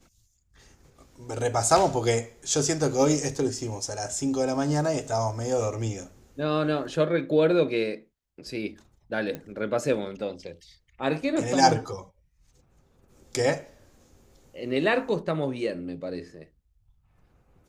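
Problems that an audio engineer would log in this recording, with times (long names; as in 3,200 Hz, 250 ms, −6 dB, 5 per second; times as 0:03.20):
0:09.35: click −20 dBFS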